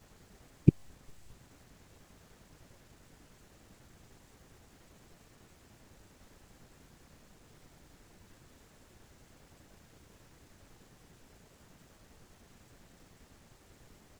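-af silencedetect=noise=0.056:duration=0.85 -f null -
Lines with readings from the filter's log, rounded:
silence_start: 0.69
silence_end: 14.20 | silence_duration: 13.50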